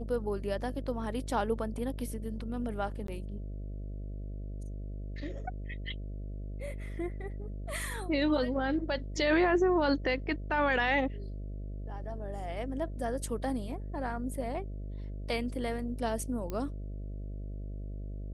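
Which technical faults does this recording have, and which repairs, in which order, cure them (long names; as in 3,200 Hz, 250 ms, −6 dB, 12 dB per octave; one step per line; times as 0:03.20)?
mains buzz 50 Hz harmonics 13 −39 dBFS
0:03.07–0:03.08: drop-out 13 ms
0:16.50: click −23 dBFS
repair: click removal
hum removal 50 Hz, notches 13
repair the gap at 0:03.07, 13 ms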